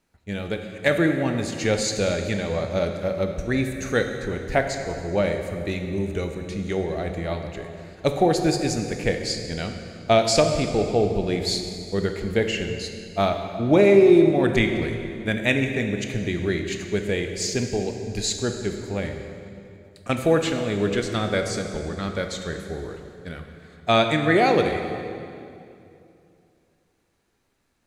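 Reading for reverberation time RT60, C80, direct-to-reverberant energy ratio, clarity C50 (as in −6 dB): 2.6 s, 7.0 dB, 5.0 dB, 6.0 dB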